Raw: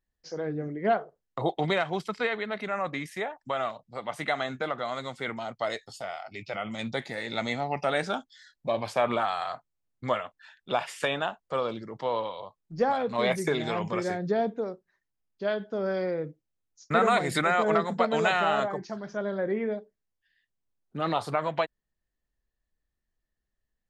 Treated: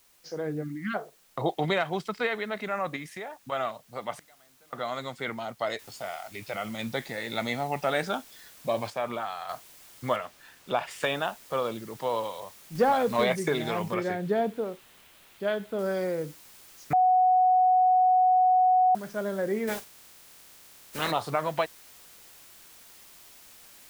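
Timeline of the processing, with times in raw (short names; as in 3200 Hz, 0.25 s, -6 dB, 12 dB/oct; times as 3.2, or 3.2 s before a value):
0.63–0.95 spectral delete 340–1100 Hz
2.96–3.52 compressor 3:1, threshold -35 dBFS
4.11–4.73 flipped gate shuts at -32 dBFS, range -32 dB
5.79 noise floor step -62 dB -52 dB
8.9–9.49 gain -6 dB
10.16–10.91 high shelf 4900 Hz -8 dB
12.75–13.24 sample leveller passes 1
13.94–15.79 resonant high shelf 4100 Hz -6 dB, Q 1.5
16.93–18.95 bleep 739 Hz -17.5 dBFS
19.67–21.1 spectral limiter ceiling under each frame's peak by 21 dB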